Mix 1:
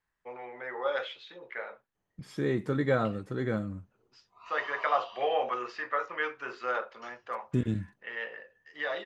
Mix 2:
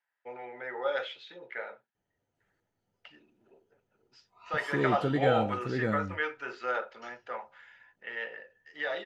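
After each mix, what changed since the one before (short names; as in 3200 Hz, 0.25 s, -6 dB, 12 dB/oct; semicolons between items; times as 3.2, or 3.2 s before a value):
second voice: entry +2.35 s; master: add Butterworth band-stop 1100 Hz, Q 5.9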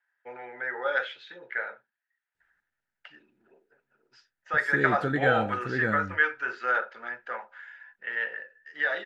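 background: muted; master: add bell 1600 Hz +12 dB 0.49 oct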